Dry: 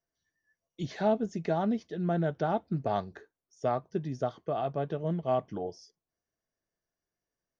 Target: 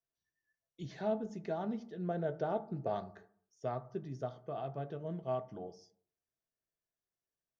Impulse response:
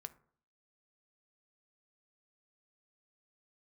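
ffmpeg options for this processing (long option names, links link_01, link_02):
-filter_complex "[0:a]asettb=1/sr,asplit=3[link_01][link_02][link_03];[link_01]atrim=end=1.974[link_04];[link_02]atrim=start=1.97:end=2.95,asetpts=PTS-STARTPTS,afade=type=in:duration=0.004:curve=qsin,afade=type=out:start_time=0.976:duration=0.004:curve=qsin,equalizer=frequency=500:width_type=o:width=0.86:gain=7[link_05];[link_03]atrim=start=2.946[link_06];[link_04][link_05]acrossfade=duration=0.004:curve1=hsin:curve2=qsin[link_07];[link_07][link_06]acrossfade=duration=0.004:curve1=qsin:curve2=hsin[link_08];[1:a]atrim=start_sample=2205,asetrate=38808,aresample=44100[link_09];[link_08][link_09]afir=irnorm=-1:irlink=0,volume=-4.5dB"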